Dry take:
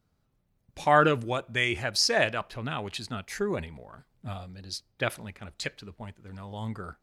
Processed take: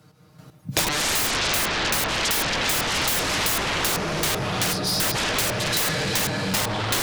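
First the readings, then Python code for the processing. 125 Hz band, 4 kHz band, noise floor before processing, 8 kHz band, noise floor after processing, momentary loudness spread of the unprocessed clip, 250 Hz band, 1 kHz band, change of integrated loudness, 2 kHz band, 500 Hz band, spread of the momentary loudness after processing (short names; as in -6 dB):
+5.5 dB, +10.5 dB, -73 dBFS, +15.0 dB, -53 dBFS, 21 LU, +5.0 dB, +3.0 dB, +6.5 dB, +6.5 dB, +1.0 dB, 3 LU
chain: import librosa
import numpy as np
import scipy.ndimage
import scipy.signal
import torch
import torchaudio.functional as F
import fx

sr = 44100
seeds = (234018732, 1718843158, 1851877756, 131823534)

p1 = fx.self_delay(x, sr, depth_ms=0.11)
p2 = fx.noise_reduce_blind(p1, sr, reduce_db=27)
p3 = p2 + fx.echo_diffused(p2, sr, ms=467, feedback_pct=51, wet_db=-11.0, dry=0)
p4 = fx.env_lowpass_down(p3, sr, base_hz=750.0, full_db=-24.0)
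p5 = scipy.signal.sosfilt(scipy.signal.butter(4, 78.0, 'highpass', fs=sr, output='sos'), p4)
p6 = fx.hum_notches(p5, sr, base_hz=60, count=7)
p7 = p6 + 0.76 * np.pad(p6, (int(6.5 * sr / 1000.0), 0))[:len(p6)]
p8 = fx.rev_plate(p7, sr, seeds[0], rt60_s=1.9, hf_ratio=0.75, predelay_ms=115, drr_db=-8.5)
p9 = fx.fold_sine(p8, sr, drive_db=18, ceiling_db=-9.5)
p10 = fx.chopper(p9, sr, hz=2.6, depth_pct=60, duty_pct=30)
p11 = (np.mod(10.0 ** (13.5 / 20.0) * p10 + 1.0, 2.0) - 1.0) / 10.0 ** (13.5 / 20.0)
p12 = fx.band_squash(p11, sr, depth_pct=100)
y = p12 * 10.0 ** (-5.5 / 20.0)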